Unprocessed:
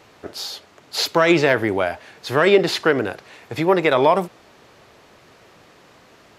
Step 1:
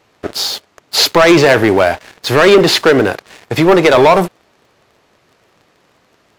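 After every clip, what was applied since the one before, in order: waveshaping leveller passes 3; trim +1 dB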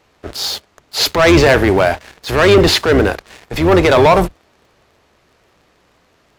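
octave divider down 2 oct, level -3 dB; transient shaper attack -8 dB, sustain 0 dB; trim -1 dB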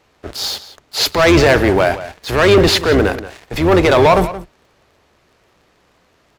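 echo from a far wall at 30 m, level -14 dB; trim -1 dB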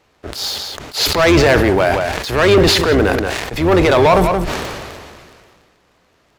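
decay stretcher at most 29 dB/s; trim -1 dB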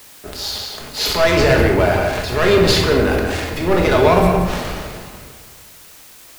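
simulated room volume 470 m³, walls mixed, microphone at 1.4 m; added noise white -37 dBFS; trim -5.5 dB

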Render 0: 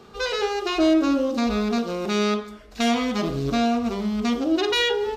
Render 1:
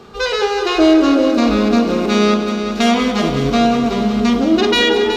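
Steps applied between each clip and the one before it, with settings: treble shelf 7.8 kHz -4.5 dB; on a send: multi-head delay 186 ms, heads first and second, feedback 63%, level -11.5 dB; on the sum: trim +7.5 dB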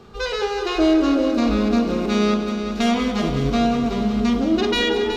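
bass shelf 130 Hz +10 dB; trim -7 dB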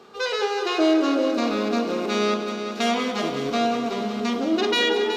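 high-pass 330 Hz 12 dB/octave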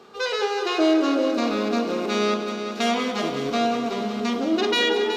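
no audible change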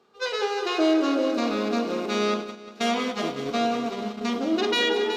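gate -26 dBFS, range -12 dB; trim -2 dB

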